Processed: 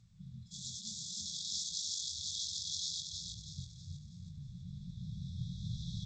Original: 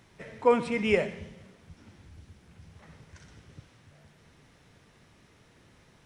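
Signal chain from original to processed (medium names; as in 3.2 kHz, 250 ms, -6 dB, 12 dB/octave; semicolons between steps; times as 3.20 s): 0.51–3.00 s: zero-crossing glitches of -16.5 dBFS; recorder AGC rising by 9.2 dB/s; hum notches 50/100/150/200 Hz; level-controlled noise filter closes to 680 Hz, open at -20.5 dBFS; tilt EQ +2 dB/octave; compression 16:1, threshold -38 dBFS, peak gain reduction 21 dB; chorus 1.2 Hz, delay 17.5 ms, depth 5.8 ms; brick-wall FIR band-stop 200–3300 Hz; feedback delay 322 ms, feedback 40%, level -4.5 dB; trim +10 dB; G.722 64 kbps 16 kHz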